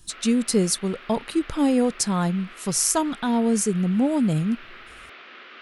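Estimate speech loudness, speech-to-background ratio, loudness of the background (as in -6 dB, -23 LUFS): -23.0 LUFS, 20.0 dB, -43.0 LUFS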